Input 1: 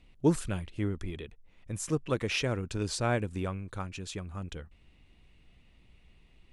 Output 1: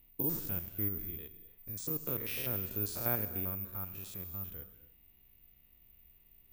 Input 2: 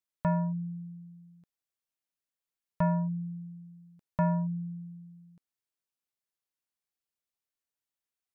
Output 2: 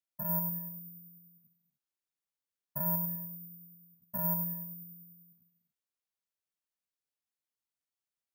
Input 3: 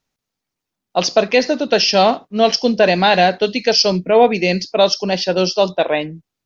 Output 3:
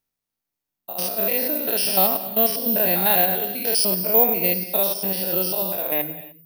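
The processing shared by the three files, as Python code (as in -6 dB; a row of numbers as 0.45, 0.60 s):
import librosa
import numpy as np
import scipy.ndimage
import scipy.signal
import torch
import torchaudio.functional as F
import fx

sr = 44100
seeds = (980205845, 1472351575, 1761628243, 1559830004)

y = fx.spec_steps(x, sr, hold_ms=100)
y = fx.rev_gated(y, sr, seeds[0], gate_ms=320, shape='flat', drr_db=11.0)
y = (np.kron(y[::3], np.eye(3)[0]) * 3)[:len(y)]
y = F.gain(torch.from_numpy(y), -8.0).numpy()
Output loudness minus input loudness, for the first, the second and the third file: -2.0, -1.0, -3.5 LU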